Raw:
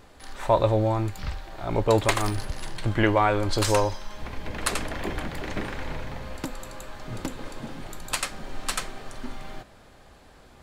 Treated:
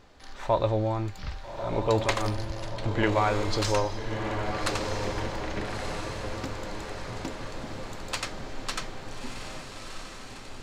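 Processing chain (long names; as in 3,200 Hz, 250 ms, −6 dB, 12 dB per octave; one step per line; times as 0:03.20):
high shelf with overshoot 7,600 Hz −7.5 dB, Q 1.5
feedback delay with all-pass diffusion 1,279 ms, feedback 58%, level −6 dB
level −4 dB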